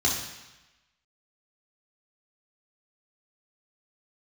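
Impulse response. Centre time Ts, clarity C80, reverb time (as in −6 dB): 45 ms, 6.5 dB, 1.0 s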